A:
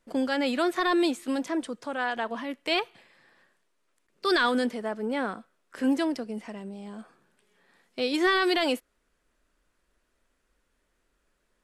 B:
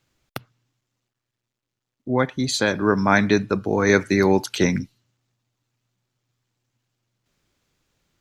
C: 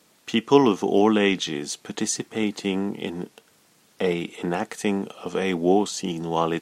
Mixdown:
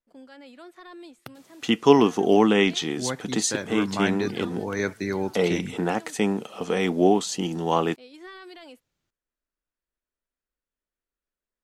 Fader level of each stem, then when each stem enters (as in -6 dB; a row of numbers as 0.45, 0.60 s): -20.0, -10.0, +0.5 dB; 0.00, 0.90, 1.35 s